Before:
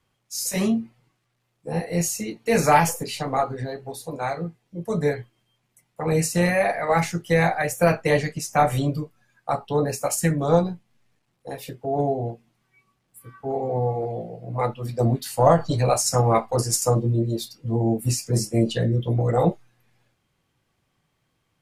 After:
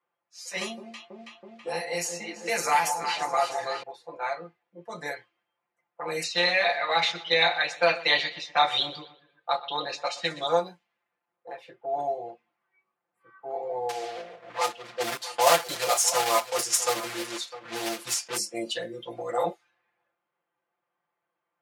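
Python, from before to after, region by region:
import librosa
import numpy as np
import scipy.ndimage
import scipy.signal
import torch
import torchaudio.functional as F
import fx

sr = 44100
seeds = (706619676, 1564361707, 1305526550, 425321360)

y = fx.chain(x, sr, fx.high_shelf(hz=12000.0, db=-6.5),
    fx.echo_alternate(ms=163, hz=890.0, feedback_pct=67, wet_db=-8),
    fx.band_squash(depth_pct=70), at=(0.61, 3.83))
y = fx.chain(y, sr, fx.lowpass_res(hz=3700.0, q=9.4),
    fx.echo_feedback(ms=123, feedback_pct=48, wet_db=-17.5), at=(6.23, 10.47))
y = fx.chain(y, sr, fx.block_float(bits=3),
    fx.echo_single(ms=655, db=-15.0), at=(13.89, 18.39))
y = fx.env_lowpass(y, sr, base_hz=1200.0, full_db=-17.0)
y = scipy.signal.sosfilt(scipy.signal.bessel(2, 860.0, 'highpass', norm='mag', fs=sr, output='sos'), y)
y = y + 0.8 * np.pad(y, (int(5.8 * sr / 1000.0), 0))[:len(y)]
y = F.gain(torch.from_numpy(y), -2.0).numpy()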